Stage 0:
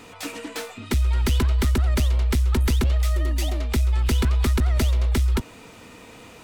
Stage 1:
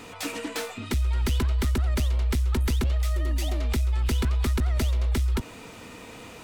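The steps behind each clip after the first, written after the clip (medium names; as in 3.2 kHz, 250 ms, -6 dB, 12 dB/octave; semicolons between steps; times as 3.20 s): peak limiter -21 dBFS, peak gain reduction 6 dB; trim +1.5 dB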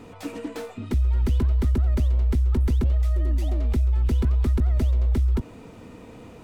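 tilt shelf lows +7.5 dB, about 930 Hz; trim -4 dB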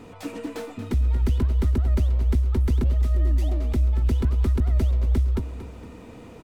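feedback delay 231 ms, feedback 38%, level -11.5 dB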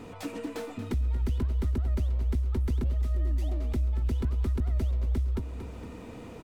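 compression 1.5:1, threshold -37 dBFS, peak gain reduction 7 dB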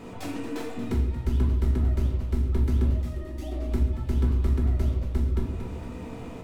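reverberation RT60 0.75 s, pre-delay 5 ms, DRR -1.5 dB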